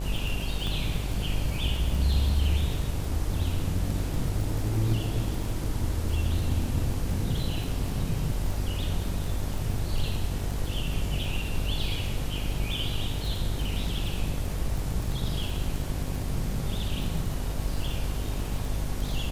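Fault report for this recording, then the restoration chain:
mains buzz 50 Hz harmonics 19 −33 dBFS
surface crackle 38 per second −31 dBFS
0:00.67: click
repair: click removal
hum removal 50 Hz, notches 19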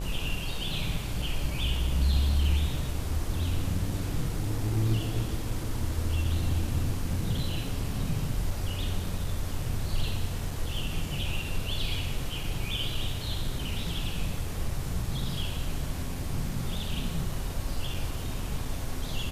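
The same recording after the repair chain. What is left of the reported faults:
0:00.67: click

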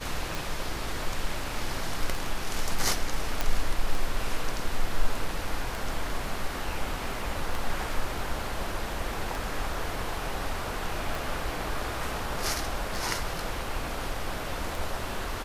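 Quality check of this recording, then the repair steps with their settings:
scratch tick 33 1/3 rpm
0:03.41: click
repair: click removal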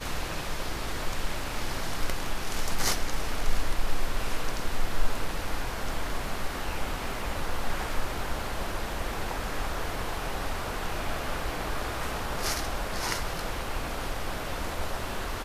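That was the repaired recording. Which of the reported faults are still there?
none of them is left

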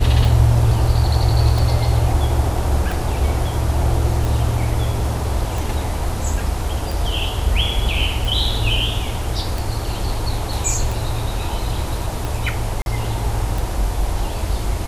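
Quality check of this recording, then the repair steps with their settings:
scratch tick 45 rpm
0:12.82–0:12.86: drop-out 41 ms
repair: click removal
repair the gap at 0:12.82, 41 ms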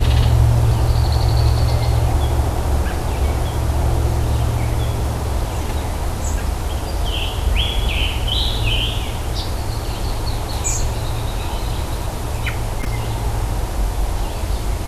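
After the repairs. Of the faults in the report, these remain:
none of them is left

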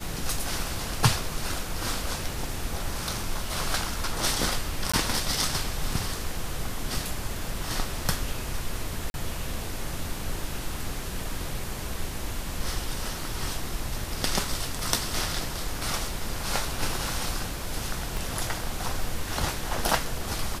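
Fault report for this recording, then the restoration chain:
0:04.92–0:04.93: drop-out 15 ms
0:09.10–0:09.14: drop-out 41 ms
0:18.17: click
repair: click removal
repair the gap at 0:04.92, 15 ms
repair the gap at 0:09.10, 41 ms

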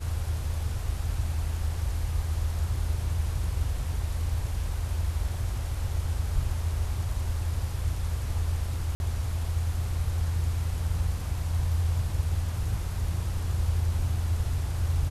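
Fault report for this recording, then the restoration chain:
0:08.95–0:09.00: drop-out 51 ms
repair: repair the gap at 0:08.95, 51 ms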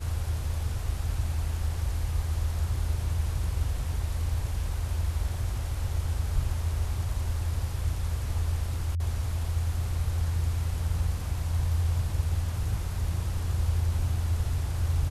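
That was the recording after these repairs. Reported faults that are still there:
none of them is left

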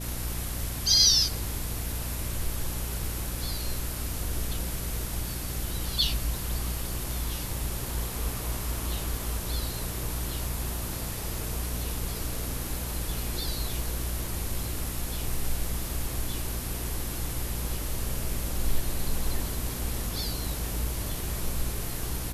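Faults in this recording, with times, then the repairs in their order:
mains hum 60 Hz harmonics 6 −35 dBFS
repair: hum removal 60 Hz, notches 6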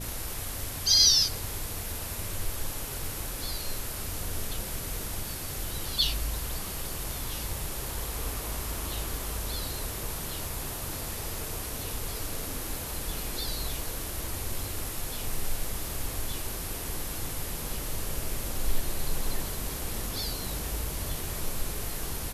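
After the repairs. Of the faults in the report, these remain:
none of them is left

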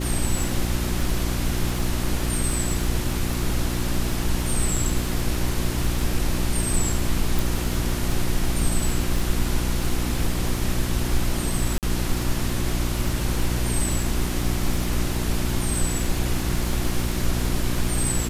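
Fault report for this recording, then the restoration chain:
surface crackle 45 per second −26 dBFS
mains hum 60 Hz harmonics 6 −27 dBFS
0:07.39: click
0:11.78–0:11.83: drop-out 48 ms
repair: click removal
hum removal 60 Hz, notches 6
repair the gap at 0:11.78, 48 ms

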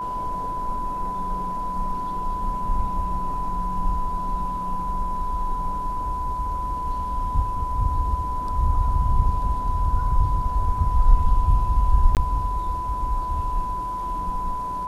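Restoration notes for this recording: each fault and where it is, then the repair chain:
whistle 1,000 Hz −26 dBFS
0:12.15–0:12.17: drop-out 18 ms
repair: notch filter 1,000 Hz, Q 30
repair the gap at 0:12.15, 18 ms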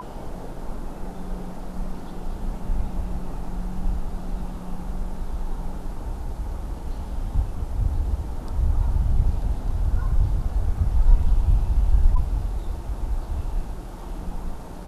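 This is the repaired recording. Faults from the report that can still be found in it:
none of them is left

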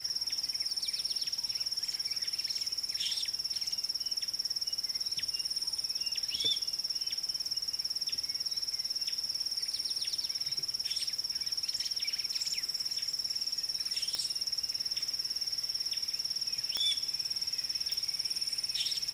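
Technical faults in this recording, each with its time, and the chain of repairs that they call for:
surface crackle 20 per second −39 dBFS
0:14.15: click −18 dBFS
0:16.77: click −17 dBFS
0:17.92: click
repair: click removal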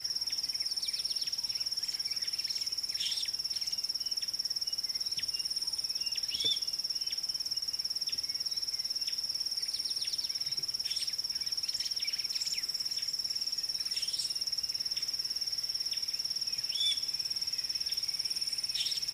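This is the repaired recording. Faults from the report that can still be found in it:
none of them is left

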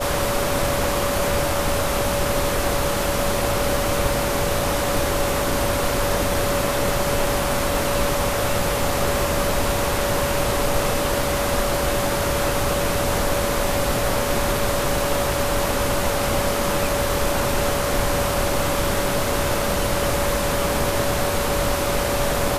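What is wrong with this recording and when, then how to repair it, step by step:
whistle 570 Hz −25 dBFS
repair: notch filter 570 Hz, Q 30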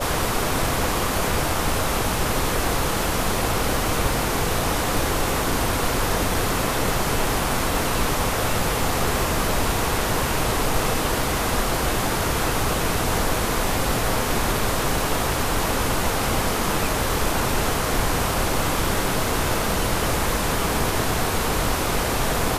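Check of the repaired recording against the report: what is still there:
none of them is left

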